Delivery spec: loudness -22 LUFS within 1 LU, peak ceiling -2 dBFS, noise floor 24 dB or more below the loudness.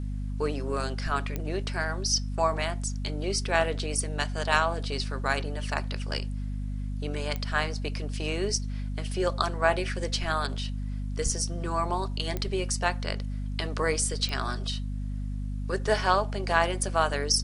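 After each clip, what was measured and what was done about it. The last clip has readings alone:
clicks 4; hum 50 Hz; harmonics up to 250 Hz; hum level -29 dBFS; loudness -29.0 LUFS; peak -7.0 dBFS; loudness target -22.0 LUFS
-> de-click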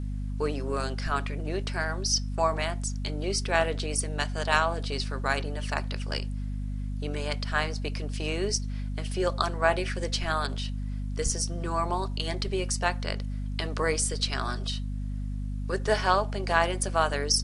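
clicks 0; hum 50 Hz; harmonics up to 250 Hz; hum level -29 dBFS
-> de-hum 50 Hz, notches 5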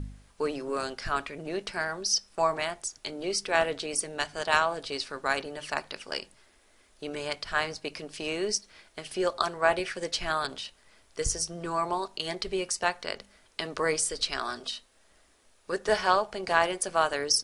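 hum none; loudness -30.0 LUFS; peak -7.0 dBFS; loudness target -22.0 LUFS
-> gain +8 dB; limiter -2 dBFS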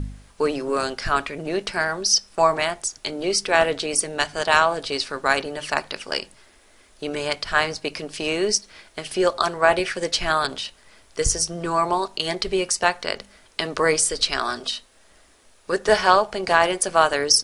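loudness -22.0 LUFS; peak -2.0 dBFS; noise floor -55 dBFS

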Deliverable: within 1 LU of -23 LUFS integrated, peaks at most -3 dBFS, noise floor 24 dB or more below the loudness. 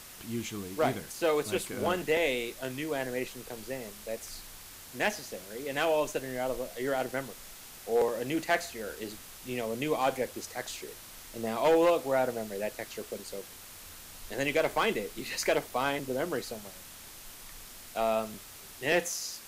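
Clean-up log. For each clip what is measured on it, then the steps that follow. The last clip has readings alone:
clipped 0.2%; flat tops at -18.5 dBFS; noise floor -49 dBFS; noise floor target -56 dBFS; loudness -31.5 LUFS; peak -18.5 dBFS; loudness target -23.0 LUFS
-> clip repair -18.5 dBFS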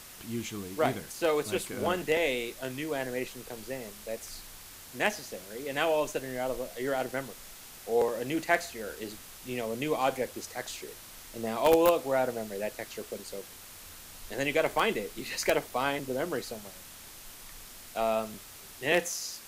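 clipped 0.0%; noise floor -49 dBFS; noise floor target -56 dBFS
-> denoiser 7 dB, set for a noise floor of -49 dBFS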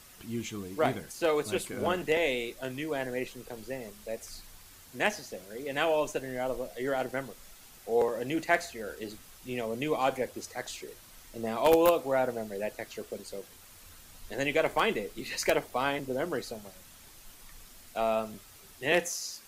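noise floor -53 dBFS; noise floor target -56 dBFS
-> denoiser 6 dB, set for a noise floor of -53 dBFS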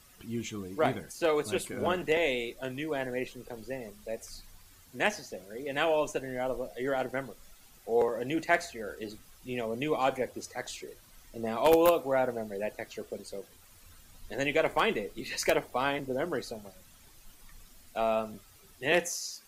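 noise floor -57 dBFS; loudness -31.5 LUFS; peak -9.5 dBFS; loudness target -23.0 LUFS
-> gain +8.5 dB; limiter -3 dBFS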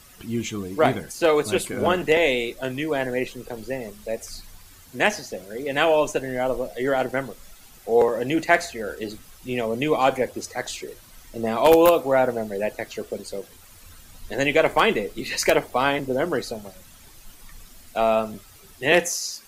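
loudness -23.0 LUFS; peak -3.0 dBFS; noise floor -49 dBFS

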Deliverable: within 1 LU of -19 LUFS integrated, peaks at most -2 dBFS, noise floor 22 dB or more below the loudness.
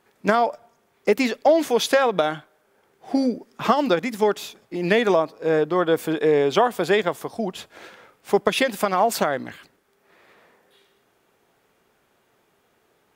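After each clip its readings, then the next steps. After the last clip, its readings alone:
loudness -21.5 LUFS; peak -3.0 dBFS; loudness target -19.0 LUFS
-> gain +2.5 dB; limiter -2 dBFS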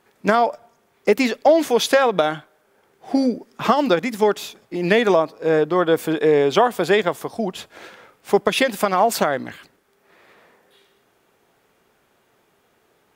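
loudness -19.5 LUFS; peak -2.0 dBFS; noise floor -63 dBFS

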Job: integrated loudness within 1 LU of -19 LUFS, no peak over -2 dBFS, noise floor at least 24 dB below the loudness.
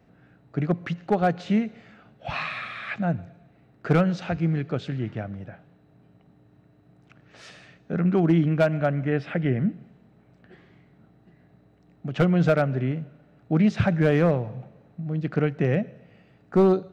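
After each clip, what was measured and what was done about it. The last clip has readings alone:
clipped 0.4%; flat tops at -12.0 dBFS; loudness -24.5 LUFS; peak -12.0 dBFS; loudness target -19.0 LUFS
-> clip repair -12 dBFS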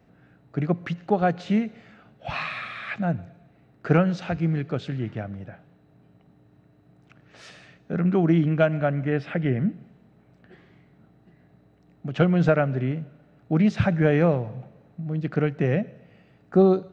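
clipped 0.0%; loudness -24.5 LUFS; peak -6.5 dBFS; loudness target -19.0 LUFS
-> gain +5.5 dB; limiter -2 dBFS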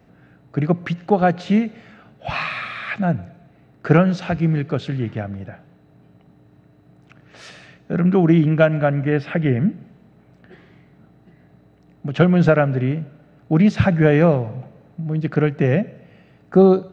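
loudness -19.0 LUFS; peak -2.0 dBFS; noise floor -53 dBFS

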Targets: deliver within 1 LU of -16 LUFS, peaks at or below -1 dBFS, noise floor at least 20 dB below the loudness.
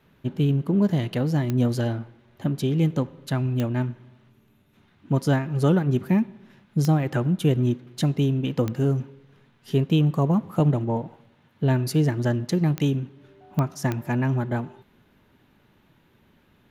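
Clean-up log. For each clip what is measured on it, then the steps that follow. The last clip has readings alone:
clicks 7; loudness -24.0 LUFS; peak -8.5 dBFS; loudness target -16.0 LUFS
-> de-click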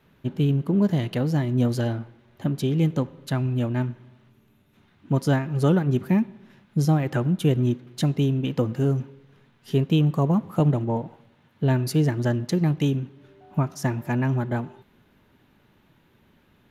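clicks 0; loudness -24.0 LUFS; peak -10.5 dBFS; loudness target -16.0 LUFS
-> gain +8 dB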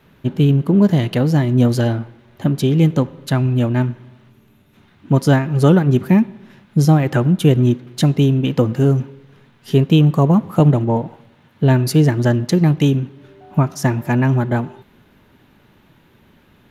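loudness -16.0 LUFS; peak -2.5 dBFS; noise floor -53 dBFS

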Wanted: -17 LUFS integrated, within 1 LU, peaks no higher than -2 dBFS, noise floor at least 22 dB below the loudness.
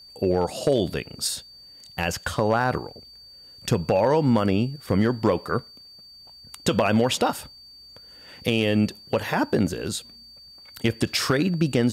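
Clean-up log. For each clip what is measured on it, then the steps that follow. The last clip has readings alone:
clipped 0.2%; flat tops at -11.5 dBFS; steady tone 4600 Hz; tone level -45 dBFS; loudness -24.0 LUFS; peak -11.5 dBFS; loudness target -17.0 LUFS
-> clip repair -11.5 dBFS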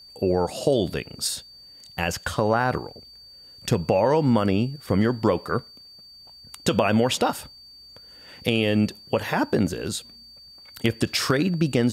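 clipped 0.0%; steady tone 4600 Hz; tone level -45 dBFS
-> notch 4600 Hz, Q 30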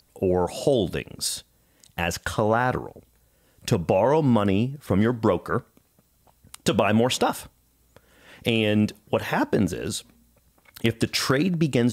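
steady tone none; loudness -24.0 LUFS; peak -5.0 dBFS; loudness target -17.0 LUFS
-> gain +7 dB; limiter -2 dBFS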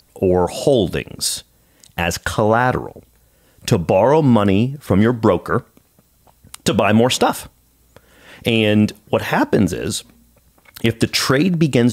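loudness -17.0 LUFS; peak -2.0 dBFS; noise floor -57 dBFS

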